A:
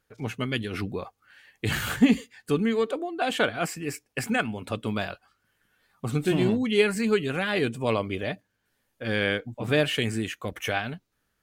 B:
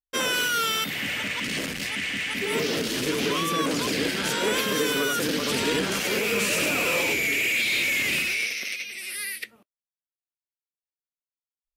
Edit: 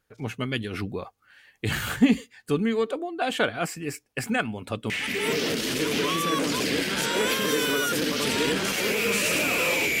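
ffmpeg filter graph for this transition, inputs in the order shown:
-filter_complex "[0:a]apad=whole_dur=10,atrim=end=10,atrim=end=4.902[s0];[1:a]atrim=start=2.168:end=7.27[s1];[s0][s1]acrossfade=d=0.004:c1=hsin:c2=hsin"

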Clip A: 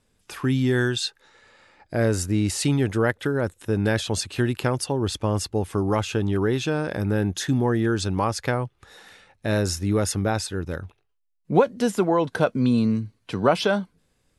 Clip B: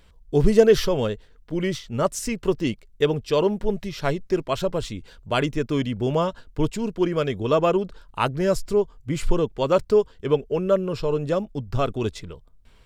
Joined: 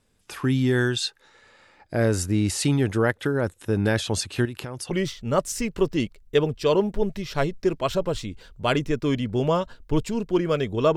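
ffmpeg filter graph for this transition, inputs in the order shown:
-filter_complex "[0:a]asettb=1/sr,asplit=3[s0][s1][s2];[s0]atrim=end=4.454[s3];[s1]atrim=start=4.45:end=4.91,asetpts=PTS-STARTPTS,afade=t=in:d=0.004:c=qsin,afade=t=out:st=0.456:d=0.004:c=qsin,acompressor=threshold=0.0355:ratio=12:attack=3.2:release=140:knee=1:detection=peak[s4];[s2]atrim=start=4.906[s5];[s3][s4]acrossfade=d=0.004:c1=hsin:c2=qsin[s6];[s6][s5]acrossfade=d=0.004:c1=qsin:c2=hsin,apad=whole_dur=10.96,atrim=end=10.96,atrim=end=4.912[s7];[1:a]atrim=start=1.578:end=7.63[s8];[s7][s8]acrossfade=d=0.004:c1=hsin:c2=hsin"

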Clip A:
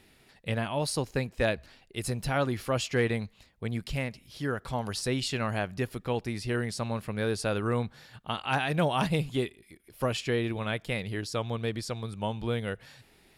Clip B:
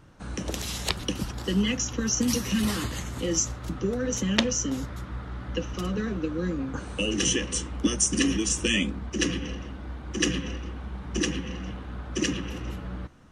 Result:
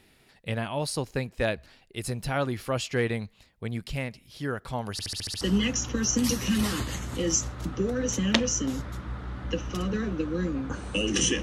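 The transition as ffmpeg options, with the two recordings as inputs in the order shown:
-filter_complex "[0:a]apad=whole_dur=11.42,atrim=end=11.42,asplit=7[s0][s1][s2][s3][s4][s5][s6];[s0]atrim=end=4.992[s7];[s1]atrim=start=4.918:end=4.992[s8];[s2]atrim=start=4.918:end=4.992[s9];[s3]atrim=start=4.918:end=4.992[s10];[s4]atrim=start=4.918:end=4.992[s11];[s5]atrim=start=4.918:end=4.992[s12];[s6]atrim=start=4.918:end=4.992[s13];[1:a]atrim=start=1.448:end=7.46[s14];[s7][s8]acrossfade=d=0.004:c1=hsin:c2=hsin[s15];[s15][s9]acrossfade=d=0.004:c1=hsin:c2=hsin[s16];[s16][s10]acrossfade=d=0.004:c1=hsin:c2=hsin[s17];[s17][s11]acrossfade=d=0.004:c1=hsin:c2=hsin[s18];[s18][s12]acrossfade=d=0.004:c1=hsin:c2=hsin[s19];[s19][s13]acrossfade=d=0.004:c1=hsin:c2=hsin[s20];[s20][s14]acrossfade=d=0.004:c1=hsin:c2=hsin"

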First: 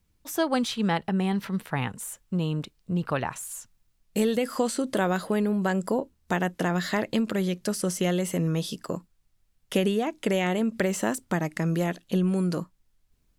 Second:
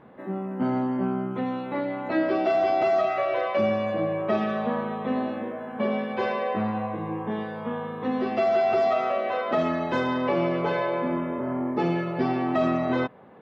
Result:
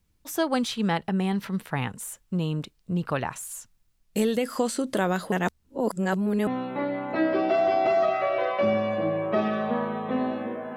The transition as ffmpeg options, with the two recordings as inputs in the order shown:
-filter_complex "[0:a]apad=whole_dur=10.76,atrim=end=10.76,asplit=2[s0][s1];[s0]atrim=end=5.322[s2];[s1]atrim=start=5.318:end=6.472,asetpts=PTS-STARTPTS,areverse[s3];[1:a]atrim=start=1.428:end=5.72[s4];[s2][s3]acrossfade=d=0.004:c1=hsin:c2=hsin[s5];[s5][s4]acrossfade=d=0.004:c1=hsin:c2=hsin"

